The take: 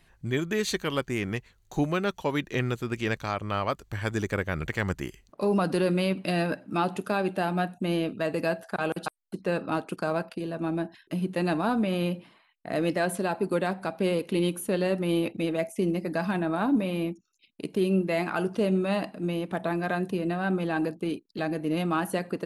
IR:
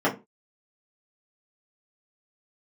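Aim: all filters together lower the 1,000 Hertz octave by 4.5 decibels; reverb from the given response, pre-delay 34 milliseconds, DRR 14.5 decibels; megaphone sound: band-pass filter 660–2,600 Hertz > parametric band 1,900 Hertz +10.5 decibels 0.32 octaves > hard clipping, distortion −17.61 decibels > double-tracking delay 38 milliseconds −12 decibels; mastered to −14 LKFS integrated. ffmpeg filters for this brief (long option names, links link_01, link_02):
-filter_complex "[0:a]equalizer=frequency=1000:width_type=o:gain=-5,asplit=2[link_01][link_02];[1:a]atrim=start_sample=2205,adelay=34[link_03];[link_02][link_03]afir=irnorm=-1:irlink=0,volume=-30dB[link_04];[link_01][link_04]amix=inputs=2:normalize=0,highpass=660,lowpass=2600,equalizer=frequency=1900:width_type=o:width=0.32:gain=10.5,asoftclip=type=hard:threshold=-23dB,asplit=2[link_05][link_06];[link_06]adelay=38,volume=-12dB[link_07];[link_05][link_07]amix=inputs=2:normalize=0,volume=20.5dB"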